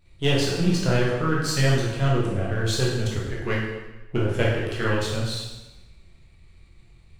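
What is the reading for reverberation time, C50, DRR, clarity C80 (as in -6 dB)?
1.1 s, 1.5 dB, -5.0 dB, 4.0 dB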